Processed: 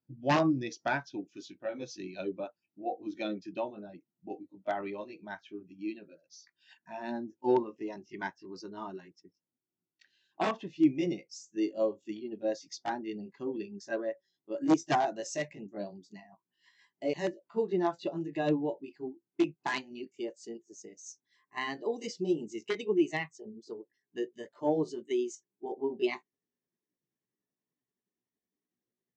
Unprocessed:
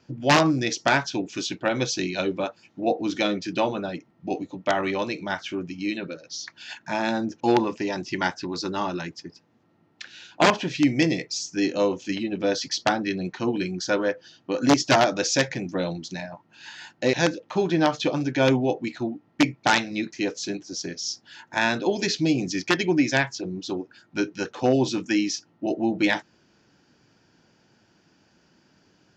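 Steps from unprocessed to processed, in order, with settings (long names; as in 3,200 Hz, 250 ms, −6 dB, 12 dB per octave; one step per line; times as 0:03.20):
pitch glide at a constant tempo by +3.5 semitones starting unshifted
every bin expanded away from the loudest bin 1.5 to 1
level −5 dB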